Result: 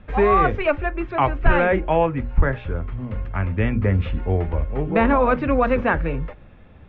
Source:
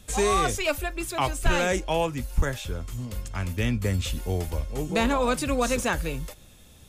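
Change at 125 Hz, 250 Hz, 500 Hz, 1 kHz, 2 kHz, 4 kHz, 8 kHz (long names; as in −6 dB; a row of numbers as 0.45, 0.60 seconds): +6.5 dB, +6.0 dB, +6.5 dB, +7.0 dB, +5.0 dB, −8.5 dB, below −40 dB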